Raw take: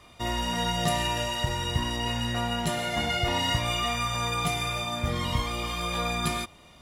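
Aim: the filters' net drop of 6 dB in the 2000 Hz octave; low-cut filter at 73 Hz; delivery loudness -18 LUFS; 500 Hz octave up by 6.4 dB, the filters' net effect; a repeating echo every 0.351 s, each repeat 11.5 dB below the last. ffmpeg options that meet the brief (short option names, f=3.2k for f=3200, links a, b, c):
-af "highpass=73,equalizer=f=500:t=o:g=9,equalizer=f=2k:t=o:g=-8,aecho=1:1:351|702|1053:0.266|0.0718|0.0194,volume=9.5dB"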